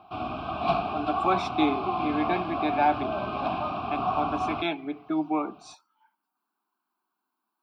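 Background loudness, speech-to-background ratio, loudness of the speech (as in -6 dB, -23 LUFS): -30.0 LUFS, 0.5 dB, -29.5 LUFS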